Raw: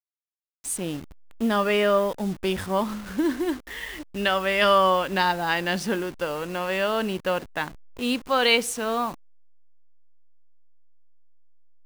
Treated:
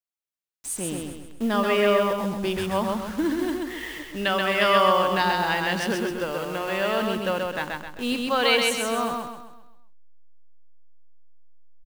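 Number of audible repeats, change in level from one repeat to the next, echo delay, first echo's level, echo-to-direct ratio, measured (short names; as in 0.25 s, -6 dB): 5, -7.5 dB, 0.131 s, -3.0 dB, -2.0 dB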